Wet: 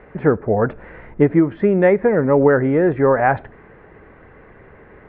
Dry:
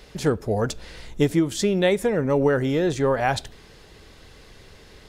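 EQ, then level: steep low-pass 2000 Hz 36 dB/oct; low shelf 79 Hz -11.5 dB; +7.0 dB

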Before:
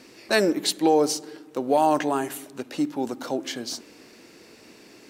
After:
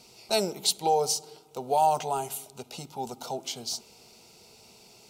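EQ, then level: bell 550 Hz -11.5 dB 0.34 oct; fixed phaser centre 720 Hz, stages 4; notch 1100 Hz, Q 6.1; +1.5 dB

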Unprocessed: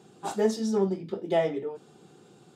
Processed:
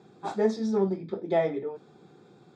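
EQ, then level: Butterworth band-stop 2900 Hz, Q 5.8; LPF 4000 Hz 12 dB/oct; 0.0 dB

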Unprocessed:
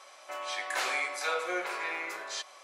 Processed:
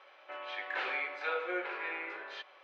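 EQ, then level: speaker cabinet 170–2900 Hz, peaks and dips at 170 Hz -4 dB, 250 Hz -5 dB, 670 Hz -8 dB, 1100 Hz -8 dB, 2100 Hz -4 dB; 0.0 dB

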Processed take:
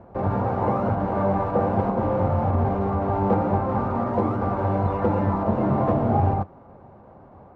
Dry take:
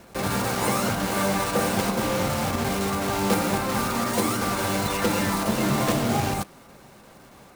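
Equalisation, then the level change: synth low-pass 830 Hz, resonance Q 1.6; bell 90 Hz +12 dB 0.51 oct; 0.0 dB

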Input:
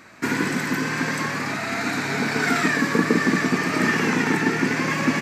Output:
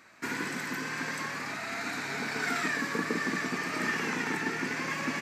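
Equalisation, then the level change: low shelf 430 Hz -7.5 dB; -8.0 dB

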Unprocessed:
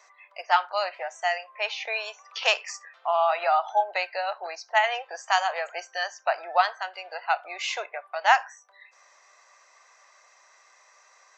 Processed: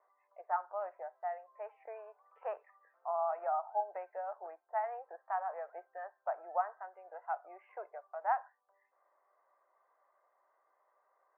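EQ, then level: Gaussian blur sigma 7.1 samples; air absorption 230 m; -7.5 dB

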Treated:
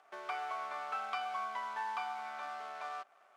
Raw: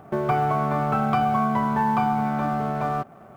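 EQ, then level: BPF 510–4300 Hz; differentiator; +3.0 dB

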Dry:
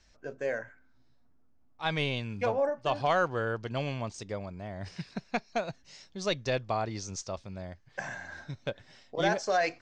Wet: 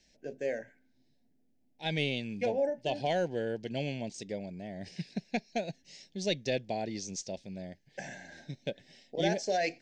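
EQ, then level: Butterworth band-stop 1200 Hz, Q 1.2; resonant low shelf 130 Hz -9 dB, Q 1.5; bell 930 Hz -3.5 dB 1.4 oct; 0.0 dB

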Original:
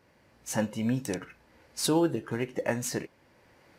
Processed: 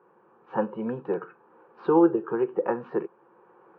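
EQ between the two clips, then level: air absorption 370 m; speaker cabinet 310–2200 Hz, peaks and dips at 350 Hz +5 dB, 590 Hz +5 dB, 1200 Hz +4 dB, 2100 Hz +5 dB; fixed phaser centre 410 Hz, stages 8; +8.5 dB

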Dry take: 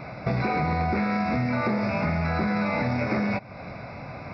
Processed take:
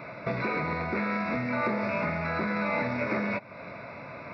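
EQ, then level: HPF 350 Hz 6 dB/oct; Butterworth band-stop 770 Hz, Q 6.4; bell 5100 Hz -10.5 dB 0.4 oct; 0.0 dB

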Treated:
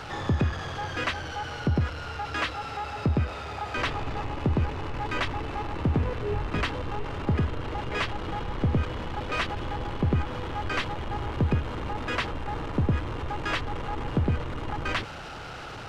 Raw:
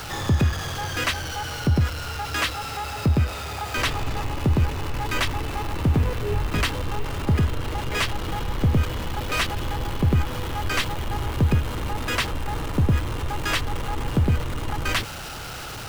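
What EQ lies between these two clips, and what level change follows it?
tape spacing loss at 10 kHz 21 dB; low shelf 170 Hz -7 dB; 0.0 dB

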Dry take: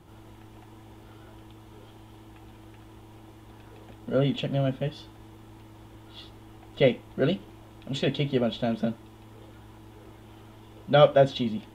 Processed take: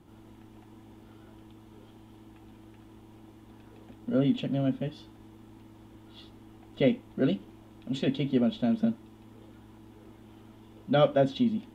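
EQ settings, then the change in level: bell 250 Hz +10.5 dB 0.67 oct; -6.0 dB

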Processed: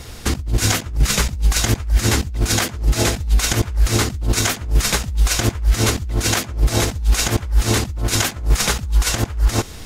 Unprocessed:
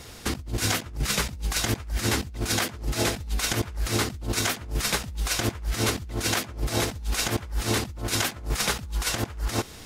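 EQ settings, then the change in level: dynamic EQ 6800 Hz, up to +4 dB, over -44 dBFS, Q 2.8; low shelf 83 Hz +11 dB; +5.5 dB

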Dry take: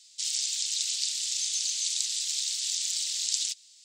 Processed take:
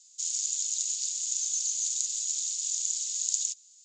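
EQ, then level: HPF 1300 Hz 6 dB/oct; ladder low-pass 7100 Hz, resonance 85%; 0.0 dB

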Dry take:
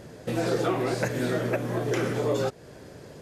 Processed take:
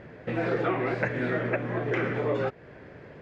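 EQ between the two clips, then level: synth low-pass 2100 Hz, resonance Q 2.1; -2.0 dB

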